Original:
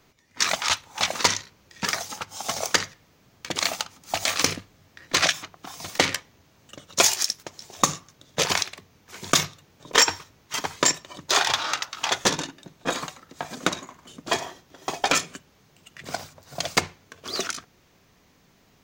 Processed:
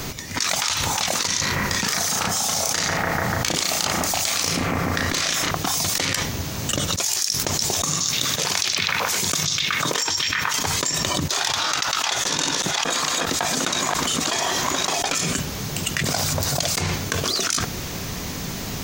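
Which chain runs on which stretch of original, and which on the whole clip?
1.27–5.51 s: compression 2.5:1, threshold -30 dBFS + doubling 35 ms -4 dB + bucket-brigade echo 146 ms, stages 2048, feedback 71%, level -9.5 dB
7.88–10.54 s: high-pass 100 Hz + repeats whose band climbs or falls 124 ms, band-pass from 4.6 kHz, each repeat -0.7 oct, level -11 dB + tape noise reduction on one side only encoder only
11.82–15.02 s: chunks repeated in reverse 617 ms, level -7 dB + overdrive pedal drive 9 dB, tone 7.6 kHz, clips at -3 dBFS
whole clip: tone controls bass +5 dB, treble +7 dB; level flattener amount 100%; trim -13 dB

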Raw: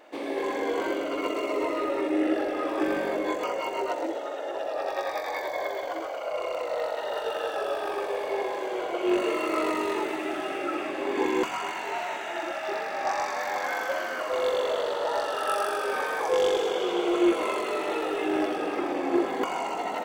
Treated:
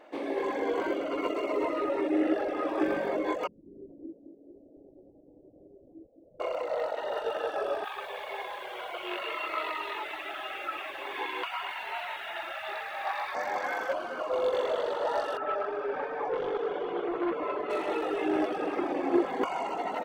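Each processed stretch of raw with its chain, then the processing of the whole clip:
3.47–6.40 s: inverse Chebyshev low-pass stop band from 1.2 kHz, stop band 70 dB + feedback delay 209 ms, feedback 40%, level -9 dB
7.84–13.35 s: high-pass 890 Hz + resonant high shelf 4.8 kHz -10 dB, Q 3 + word length cut 8-bit, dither none
13.93–14.53 s: peaking EQ 1.9 kHz -11.5 dB 0.38 oct + decimation joined by straight lines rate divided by 3×
15.37–17.70 s: tape spacing loss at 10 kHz 33 dB + comb 6.9 ms, depth 58% + transformer saturation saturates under 800 Hz
whole clip: band-stop 7.2 kHz, Q 25; reverb removal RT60 0.55 s; treble shelf 3.6 kHz -9.5 dB

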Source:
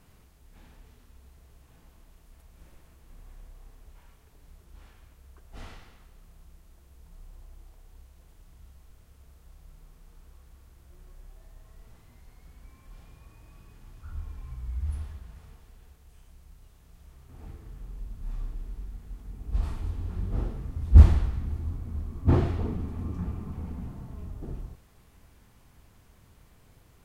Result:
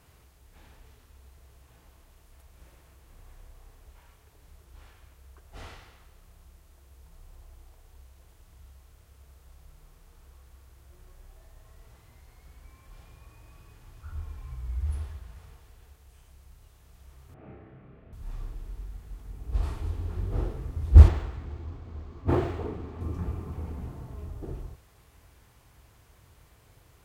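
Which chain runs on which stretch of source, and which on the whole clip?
17.34–18.13 s: cabinet simulation 140–2400 Hz, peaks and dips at 190 Hz +9 dB, 610 Hz +7 dB, 940 Hz -9 dB + flutter echo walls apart 5.2 m, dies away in 0.48 s
21.08–23.01 s: bass shelf 190 Hz -8.5 dB + decimation joined by straight lines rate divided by 4×
whole clip: dynamic bell 380 Hz, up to +4 dB, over -52 dBFS, Q 1.3; high-pass 42 Hz; peaking EQ 210 Hz -9 dB 0.74 oct; trim +2 dB

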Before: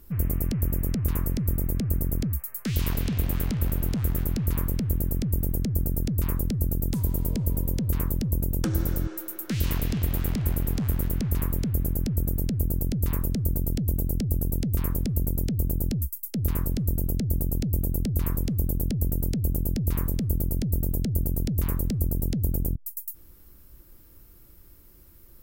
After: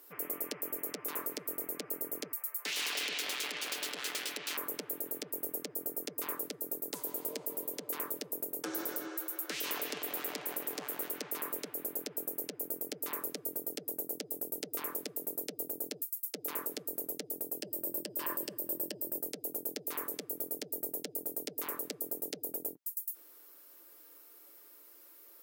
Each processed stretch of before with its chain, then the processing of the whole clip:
2.65–4.57 s: self-modulated delay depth 0.5 ms + frequency weighting D
17.62–19.18 s: rippled EQ curve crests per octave 1.3, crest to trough 8 dB + level flattener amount 70%
whole clip: high-pass 400 Hz 24 dB/octave; comb 6.8 ms, depth 40%; peak limiter -23.5 dBFS

